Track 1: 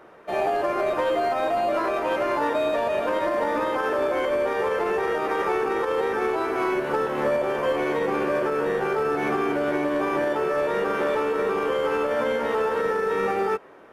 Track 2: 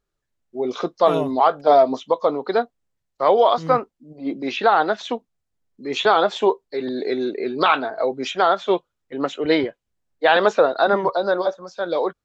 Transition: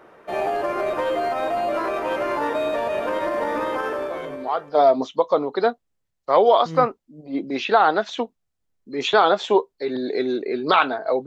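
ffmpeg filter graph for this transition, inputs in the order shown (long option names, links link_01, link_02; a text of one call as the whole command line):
ffmpeg -i cue0.wav -i cue1.wav -filter_complex "[0:a]apad=whole_dur=11.26,atrim=end=11.26,atrim=end=4.97,asetpts=PTS-STARTPTS[link_01];[1:a]atrim=start=0.71:end=8.18,asetpts=PTS-STARTPTS[link_02];[link_01][link_02]acrossfade=duration=1.18:curve1=qua:curve2=qua" out.wav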